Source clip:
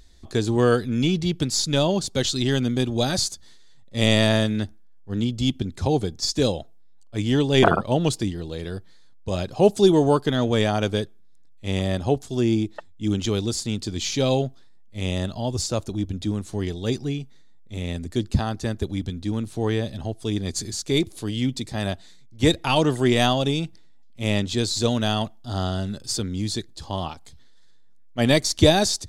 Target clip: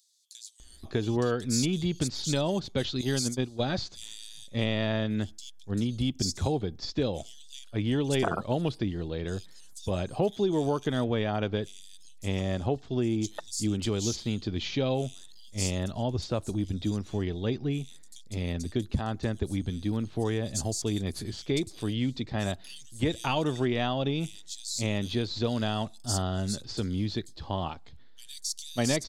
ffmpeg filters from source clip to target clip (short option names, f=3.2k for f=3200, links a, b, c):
-filter_complex "[0:a]asettb=1/sr,asplit=3[a][b][c];[a]atrim=end=2.414[d];[b]atrim=start=2.41:end=3.03,asetpts=PTS-STARTPTS,afade=t=in:d=0.004:c=qsin,afade=t=out:st=0.616:d=0.004:c=qsin,agate=range=-17dB:threshold=-21dB:ratio=16:detection=peak[e];[c]atrim=start=3.026[f];[d][e]acrossfade=d=0.004:c1=hsin:c2=qsin[g];[g][f]acrossfade=d=0.004:c1=qsin:c2=hsin,acompressor=threshold=-23dB:ratio=4,acrossover=split=4300[h][i];[h]adelay=600[j];[j][i]amix=inputs=2:normalize=0,volume=-1.5dB"